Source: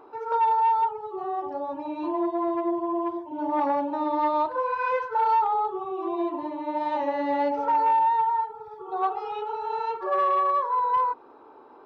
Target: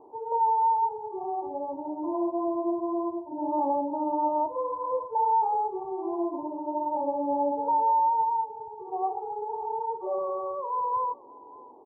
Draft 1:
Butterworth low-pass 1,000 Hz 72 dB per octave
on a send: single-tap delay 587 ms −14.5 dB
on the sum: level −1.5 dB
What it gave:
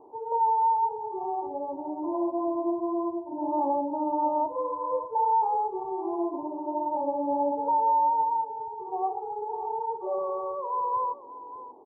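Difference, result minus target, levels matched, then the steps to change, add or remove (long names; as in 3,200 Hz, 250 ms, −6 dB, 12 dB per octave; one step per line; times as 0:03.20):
echo-to-direct +7 dB
change: single-tap delay 587 ms −21.5 dB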